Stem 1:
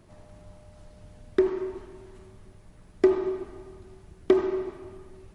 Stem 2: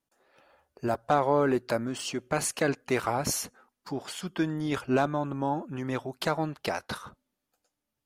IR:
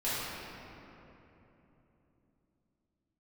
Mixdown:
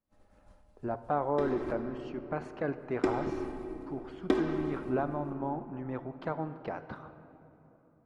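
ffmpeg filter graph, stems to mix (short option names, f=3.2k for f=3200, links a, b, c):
-filter_complex "[0:a]agate=range=-33dB:threshold=-38dB:ratio=3:detection=peak,aecho=1:1:3.8:0.98,volume=-5.5dB,asplit=3[a][b][c];[a]atrim=end=1.73,asetpts=PTS-STARTPTS,afade=t=out:st=1.726:d=0.004:c=hsin[d];[b]atrim=start=1.73:end=2.75,asetpts=PTS-STARTPTS,volume=0[e];[c]atrim=start=2.75,asetpts=PTS-STARTPTS,afade=t=in:d=0.004:c=hsin[f];[d][e][f]concat=n=3:v=0:a=1,asplit=2[g][h];[h]volume=-11.5dB[i];[1:a]lowpass=1.4k,volume=-6.5dB,asplit=3[j][k][l];[k]volume=-19dB[m];[l]apad=whole_len=235956[n];[g][n]sidechaincompress=threshold=-35dB:ratio=8:attack=16:release=165[o];[2:a]atrim=start_sample=2205[p];[i][m]amix=inputs=2:normalize=0[q];[q][p]afir=irnorm=-1:irlink=0[r];[o][j][r]amix=inputs=3:normalize=0"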